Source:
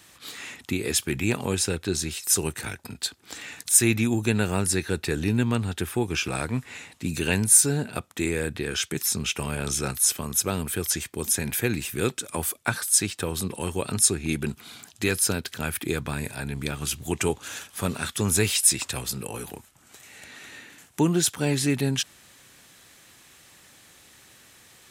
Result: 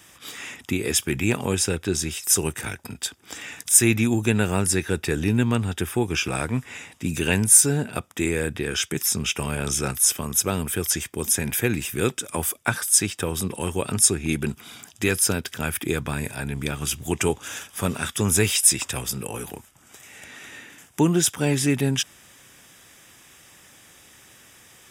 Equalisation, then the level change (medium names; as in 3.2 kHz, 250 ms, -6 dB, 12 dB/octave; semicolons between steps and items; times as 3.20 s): Butterworth band-stop 4.2 kHz, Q 6.1; +2.5 dB